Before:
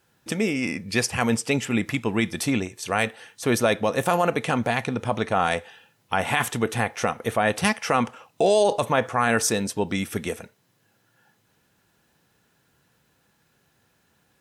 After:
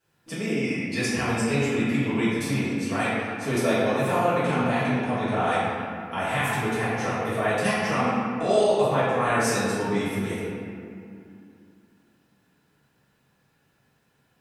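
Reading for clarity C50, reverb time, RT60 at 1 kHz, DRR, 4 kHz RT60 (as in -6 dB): -3.0 dB, 2.5 s, 2.4 s, -13.5 dB, 1.4 s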